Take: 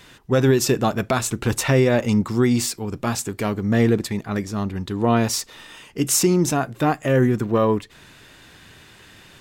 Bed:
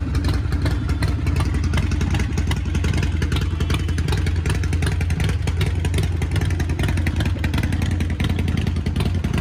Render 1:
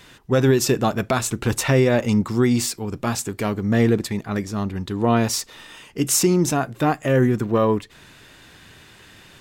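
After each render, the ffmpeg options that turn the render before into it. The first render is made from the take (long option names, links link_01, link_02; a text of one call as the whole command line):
ffmpeg -i in.wav -af anull out.wav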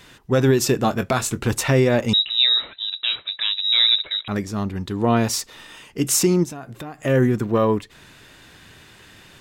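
ffmpeg -i in.wav -filter_complex "[0:a]asettb=1/sr,asplit=3[link_01][link_02][link_03];[link_01]atrim=end=0.794[link_04];[link_02]atrim=start=0.79:end=1.45,asetpts=PTS-STARTPTS,afade=type=in:duration=0.004:curve=qsin,afade=type=out:start_time=0.656:duration=0.004:curve=qsin,asplit=2[link_05][link_06];[link_06]adelay=22,volume=-11dB[link_07];[link_05][link_07]amix=inputs=2:normalize=0,atrim=end_sample=29106[link_08];[link_03]atrim=start=1.446[link_09];[link_04][link_08]acrossfade=duration=0.004:curve1=hsin:curve2=qsin[link_10];[link_10][link_09]acrossfade=duration=0.004:curve1=qsin:curve2=hsin,asettb=1/sr,asplit=3[link_11][link_12][link_13];[link_11]atrim=end=2.134[link_14];[link_12]atrim=start=2.13:end=4.28,asetpts=PTS-STARTPTS,afade=type=in:duration=0.004:curve=qsin,afade=type=out:start_time=2.146:duration=0.004:curve=qsin,lowpass=frequency=3400:width_type=q:width=0.5098,lowpass=frequency=3400:width_type=q:width=0.6013,lowpass=frequency=3400:width_type=q:width=0.9,lowpass=frequency=3400:width_type=q:width=2.563,afreqshift=-4000[link_15];[link_13]atrim=start=4.276[link_16];[link_14][link_15]acrossfade=duration=0.004:curve1=hsin:curve2=qsin[link_17];[link_17][link_16]acrossfade=duration=0.004:curve1=qsin:curve2=hsin,asplit=3[link_18][link_19][link_20];[link_18]afade=type=out:start_time=6.43:duration=0.02[link_21];[link_19]acompressor=threshold=-31dB:ratio=6:attack=3.2:release=140:knee=1:detection=peak,afade=type=in:start_time=6.43:duration=0.02,afade=type=out:start_time=6.98:duration=0.02[link_22];[link_20]afade=type=in:start_time=6.98:duration=0.02[link_23];[link_21][link_22][link_23]amix=inputs=3:normalize=0" out.wav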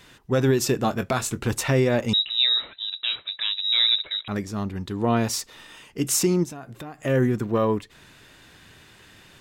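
ffmpeg -i in.wav -af "volume=-3.5dB" out.wav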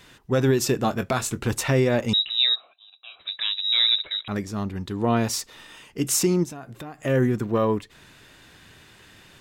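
ffmpeg -i in.wav -filter_complex "[0:a]asplit=3[link_01][link_02][link_03];[link_01]afade=type=out:start_time=2.54:duration=0.02[link_04];[link_02]asplit=3[link_05][link_06][link_07];[link_05]bandpass=frequency=730:width_type=q:width=8,volume=0dB[link_08];[link_06]bandpass=frequency=1090:width_type=q:width=8,volume=-6dB[link_09];[link_07]bandpass=frequency=2440:width_type=q:width=8,volume=-9dB[link_10];[link_08][link_09][link_10]amix=inputs=3:normalize=0,afade=type=in:start_time=2.54:duration=0.02,afade=type=out:start_time=3.19:duration=0.02[link_11];[link_03]afade=type=in:start_time=3.19:duration=0.02[link_12];[link_04][link_11][link_12]amix=inputs=3:normalize=0" out.wav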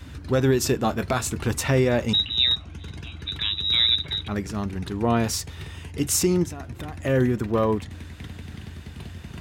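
ffmpeg -i in.wav -i bed.wav -filter_complex "[1:a]volume=-17.5dB[link_01];[0:a][link_01]amix=inputs=2:normalize=0" out.wav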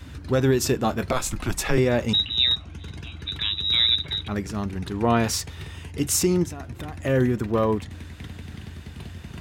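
ffmpeg -i in.wav -filter_complex "[0:a]asettb=1/sr,asplit=3[link_01][link_02][link_03];[link_01]atrim=end=1.124[link_04];[link_02]atrim=start=1.12:end=1.78,asetpts=PTS-STARTPTS,afade=type=in:duration=0.004:curve=qsin,afade=type=out:start_time=0.656:duration=0.004:curve=qsin,afreqshift=-120[link_05];[link_03]atrim=start=1.776[link_06];[link_04][link_05]acrossfade=duration=0.004:curve1=hsin:curve2=qsin[link_07];[link_07][link_06]acrossfade=duration=0.004:curve1=qsin:curve2=hsin,asettb=1/sr,asplit=3[link_08][link_09][link_10];[link_08]atrim=end=4.944[link_11];[link_09]atrim=start=4.94:end=5.49,asetpts=PTS-STARTPTS,afade=type=in:duration=0.004:curve=qsin,afade=type=out:start_time=0.546:duration=0.004:curve=qsin,equalizer=frequency=1700:width=0.4:gain=3.5[link_12];[link_10]atrim=start=5.486[link_13];[link_11][link_12]acrossfade=duration=0.004:curve1=hsin:curve2=qsin[link_14];[link_14][link_13]acrossfade=duration=0.004:curve1=qsin:curve2=hsin" out.wav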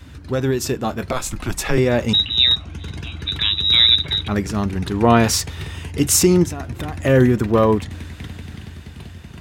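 ffmpeg -i in.wav -af "dynaudnorm=framelen=790:gausssize=5:maxgain=11.5dB" out.wav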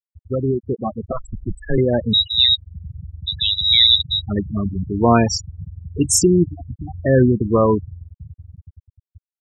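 ffmpeg -i in.wav -af "afftfilt=real='re*gte(hypot(re,im),0.251)':imag='im*gte(hypot(re,im),0.251)':win_size=1024:overlap=0.75,highshelf=frequency=9500:gain=6" out.wav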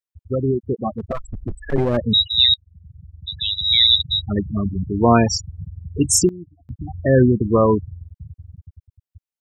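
ffmpeg -i in.wav -filter_complex "[0:a]asettb=1/sr,asplit=3[link_01][link_02][link_03];[link_01]atrim=end=0.944[link_04];[link_02]atrim=start=0.94:end=1.97,asetpts=PTS-STARTPTS,afade=type=in:duration=0.004:curve=qsin,afade=type=out:start_time=1.026:duration=0.004:curve=qsin,aeval=exprs='clip(val(0),-1,0.0891)':channel_layout=same[link_05];[link_03]atrim=start=1.966[link_06];[link_04][link_05]acrossfade=duration=0.004:curve1=hsin:curve2=qsin[link_07];[link_07][link_06]acrossfade=duration=0.004:curve1=qsin:curve2=hsin,asplit=4[link_08][link_09][link_10][link_11];[link_08]atrim=end=2.54,asetpts=PTS-STARTPTS,afade=type=out:start_time=2.536:duration=0.004:curve=hsin:silence=0.125893[link_12];[link_09]atrim=start=2.54:end=6.29,asetpts=PTS-STARTPTS,afade=type=in:duration=1.59:silence=0.125893,afade=type=out:start_time=3.57:duration=0.18:curve=log:silence=0.0891251[link_13];[link_10]atrim=start=6.29:end=6.69,asetpts=PTS-STARTPTS,volume=-21dB[link_14];[link_11]atrim=start=6.69,asetpts=PTS-STARTPTS,afade=type=in:duration=0.18:curve=log:silence=0.0891251[link_15];[link_12][link_13][link_14][link_15]concat=n=4:v=0:a=1" out.wav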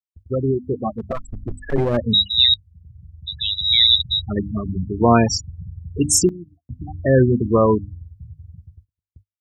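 ffmpeg -i in.wav -af "bandreject=frequency=50:width_type=h:width=6,bandreject=frequency=100:width_type=h:width=6,bandreject=frequency=150:width_type=h:width=6,bandreject=frequency=200:width_type=h:width=6,bandreject=frequency=250:width_type=h:width=6,bandreject=frequency=300:width_type=h:width=6,agate=range=-33dB:threshold=-46dB:ratio=16:detection=peak" out.wav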